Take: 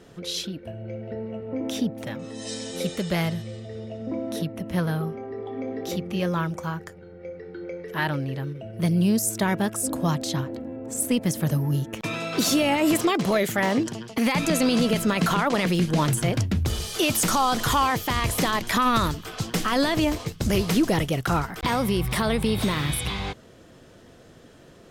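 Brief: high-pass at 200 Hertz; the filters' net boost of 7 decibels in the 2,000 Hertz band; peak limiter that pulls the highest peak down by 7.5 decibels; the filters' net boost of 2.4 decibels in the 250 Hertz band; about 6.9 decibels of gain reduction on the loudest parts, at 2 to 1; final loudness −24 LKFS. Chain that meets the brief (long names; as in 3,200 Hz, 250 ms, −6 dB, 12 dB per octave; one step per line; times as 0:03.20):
high-pass filter 200 Hz
parametric band 250 Hz +5.5 dB
parametric band 2,000 Hz +8.5 dB
downward compressor 2 to 1, threshold −27 dBFS
level +6 dB
brickwall limiter −13.5 dBFS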